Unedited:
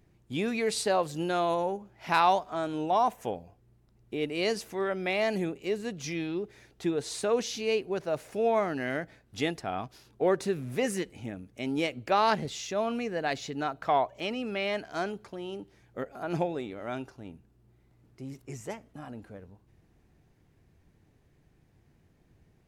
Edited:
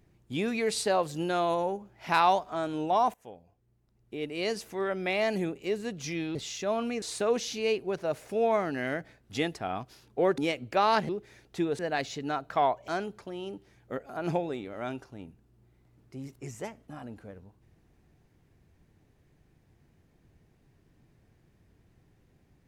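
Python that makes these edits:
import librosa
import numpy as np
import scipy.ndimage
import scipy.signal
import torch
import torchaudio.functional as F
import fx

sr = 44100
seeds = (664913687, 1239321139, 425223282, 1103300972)

y = fx.edit(x, sr, fx.fade_in_from(start_s=3.14, length_s=1.84, floor_db=-16.5),
    fx.swap(start_s=6.35, length_s=0.7, other_s=12.44, other_length_s=0.67),
    fx.cut(start_s=10.41, length_s=1.32),
    fx.cut(start_s=14.2, length_s=0.74), tone=tone)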